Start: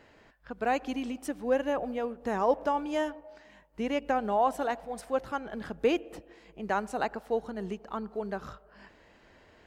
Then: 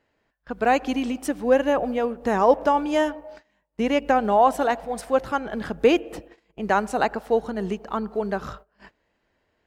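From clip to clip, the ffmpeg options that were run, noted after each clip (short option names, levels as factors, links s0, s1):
-af "agate=range=0.0891:threshold=0.00282:ratio=16:detection=peak,volume=2.66"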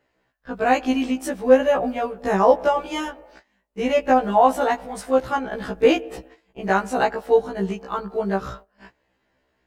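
-af "afftfilt=real='re*1.73*eq(mod(b,3),0)':imag='im*1.73*eq(mod(b,3),0)':win_size=2048:overlap=0.75,volume=1.58"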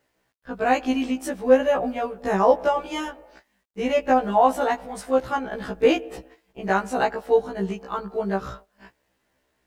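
-af "acrusher=bits=11:mix=0:aa=0.000001,volume=0.794"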